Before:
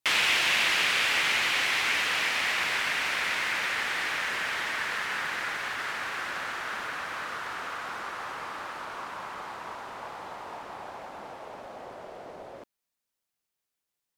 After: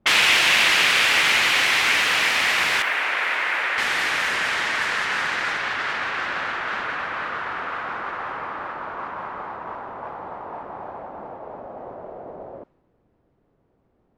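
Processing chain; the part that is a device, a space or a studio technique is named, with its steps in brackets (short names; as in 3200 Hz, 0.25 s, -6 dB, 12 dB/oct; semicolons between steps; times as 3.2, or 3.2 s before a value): 2.82–3.78 three-band isolator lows -24 dB, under 300 Hz, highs -15 dB, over 2900 Hz; cassette deck with a dynamic noise filter (white noise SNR 26 dB; low-pass opened by the level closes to 390 Hz, open at -26 dBFS); gain +7.5 dB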